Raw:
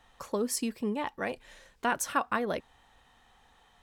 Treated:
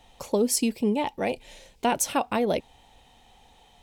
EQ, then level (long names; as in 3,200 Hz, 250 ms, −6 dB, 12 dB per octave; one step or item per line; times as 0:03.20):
flat-topped bell 1,400 Hz −11.5 dB 1 octave
+7.5 dB